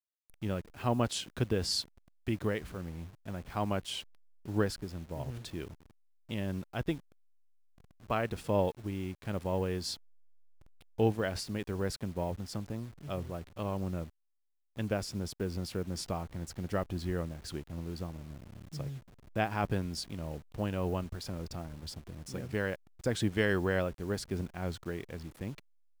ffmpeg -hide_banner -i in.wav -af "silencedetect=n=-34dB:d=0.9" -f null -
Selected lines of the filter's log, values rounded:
silence_start: 6.94
silence_end: 8.10 | silence_duration: 1.16
silence_start: 9.94
silence_end: 10.99 | silence_duration: 1.05